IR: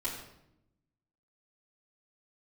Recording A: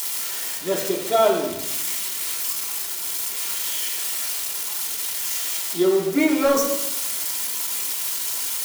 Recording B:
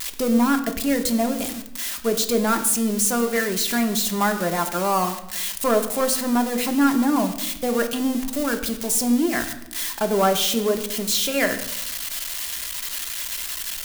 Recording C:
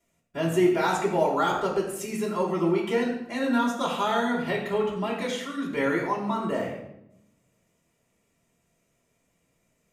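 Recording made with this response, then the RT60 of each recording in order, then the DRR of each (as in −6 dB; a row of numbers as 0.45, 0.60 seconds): C; 0.80, 0.85, 0.80 seconds; −4.0, 5.0, −9.5 decibels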